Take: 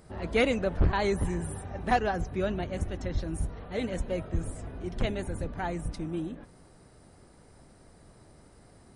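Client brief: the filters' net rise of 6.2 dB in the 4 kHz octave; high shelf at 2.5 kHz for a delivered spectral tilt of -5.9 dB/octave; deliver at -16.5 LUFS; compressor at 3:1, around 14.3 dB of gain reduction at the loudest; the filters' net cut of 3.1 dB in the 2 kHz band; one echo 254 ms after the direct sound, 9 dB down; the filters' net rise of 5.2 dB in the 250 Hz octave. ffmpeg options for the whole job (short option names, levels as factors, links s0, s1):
-af "equalizer=f=250:t=o:g=7,equalizer=f=2000:t=o:g=-8,highshelf=f=2500:g=5,equalizer=f=4000:t=o:g=6.5,acompressor=threshold=0.0126:ratio=3,aecho=1:1:254:0.355,volume=14.1"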